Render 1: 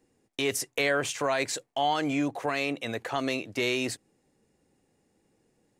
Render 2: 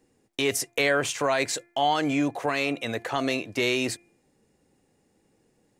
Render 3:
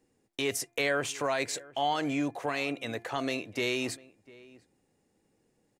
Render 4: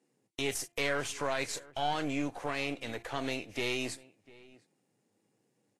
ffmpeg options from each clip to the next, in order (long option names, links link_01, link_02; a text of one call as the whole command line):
ffmpeg -i in.wav -af "bandreject=frequency=346:width_type=h:width=4,bandreject=frequency=692:width_type=h:width=4,bandreject=frequency=1038:width_type=h:width=4,bandreject=frequency=1384:width_type=h:width=4,bandreject=frequency=1730:width_type=h:width=4,bandreject=frequency=2076:width_type=h:width=4,bandreject=frequency=2422:width_type=h:width=4,volume=3dB" out.wav
ffmpeg -i in.wav -filter_complex "[0:a]asplit=2[link_01][link_02];[link_02]adelay=699.7,volume=-21dB,highshelf=frequency=4000:gain=-15.7[link_03];[link_01][link_03]amix=inputs=2:normalize=0,volume=-5.5dB" out.wav
ffmpeg -i in.wav -af "aeval=exprs='if(lt(val(0),0),0.447*val(0),val(0))':channel_layout=same,volume=-1dB" -ar 32000 -c:a libvorbis -b:a 32k out.ogg